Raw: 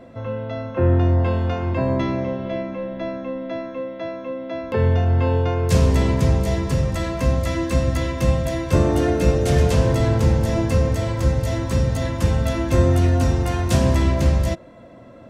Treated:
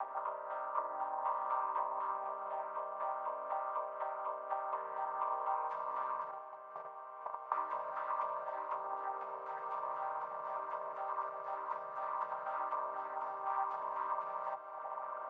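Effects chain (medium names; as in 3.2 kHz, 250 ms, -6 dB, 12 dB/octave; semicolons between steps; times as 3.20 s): vocoder on a held chord minor triad, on C3; 6.31–7.52 s: gate -18 dBFS, range -33 dB; tilt EQ +4.5 dB/octave; upward compressor, threshold -36 dBFS; peak limiter -24.5 dBFS, peak gain reduction 8 dB; compression 4:1, threshold -39 dBFS, peak gain reduction 9 dB; Butterworth band-pass 1 kHz, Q 2.4; echo that smears into a reverb 1969 ms, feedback 44%, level -11.5 dB; reverberation RT60 0.70 s, pre-delay 152 ms, DRR 14 dB; trim +13.5 dB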